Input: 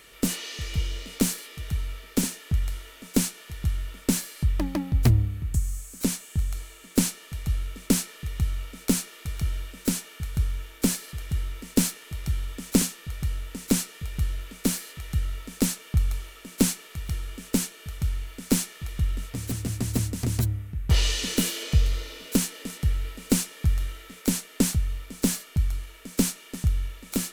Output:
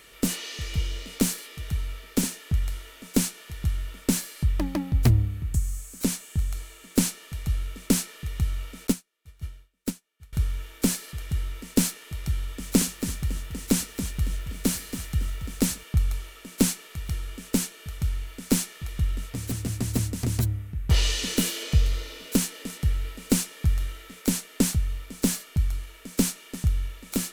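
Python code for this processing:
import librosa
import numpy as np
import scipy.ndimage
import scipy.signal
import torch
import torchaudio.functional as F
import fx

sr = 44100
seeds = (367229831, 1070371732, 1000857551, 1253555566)

y = fx.upward_expand(x, sr, threshold_db=-40.0, expansion=2.5, at=(8.87, 10.33))
y = fx.echo_crushed(y, sr, ms=278, feedback_pct=35, bits=8, wet_db=-9.5, at=(12.32, 15.84))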